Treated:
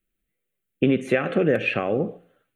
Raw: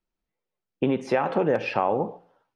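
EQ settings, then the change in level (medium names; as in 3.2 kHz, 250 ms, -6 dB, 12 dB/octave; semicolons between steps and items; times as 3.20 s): treble shelf 4.6 kHz +8 dB; static phaser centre 2.2 kHz, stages 4; +5.5 dB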